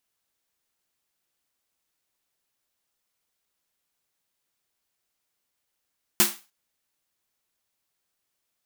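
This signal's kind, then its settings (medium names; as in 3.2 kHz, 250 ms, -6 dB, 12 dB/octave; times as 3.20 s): snare drum length 0.30 s, tones 210 Hz, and 350 Hz, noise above 670 Hz, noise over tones 9.5 dB, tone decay 0.24 s, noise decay 0.31 s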